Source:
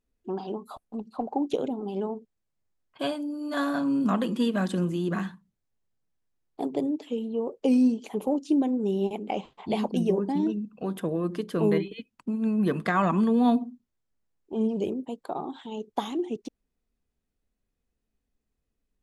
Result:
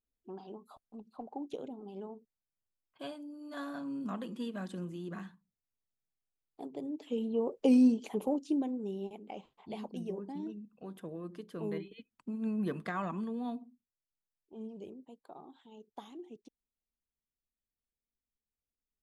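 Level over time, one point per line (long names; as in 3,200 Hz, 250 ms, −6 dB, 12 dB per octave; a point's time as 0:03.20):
0:06.80 −13.5 dB
0:07.21 −2.5 dB
0:08.01 −2.5 dB
0:09.17 −14.5 dB
0:11.64 −14.5 dB
0:12.50 −8 dB
0:13.63 −18 dB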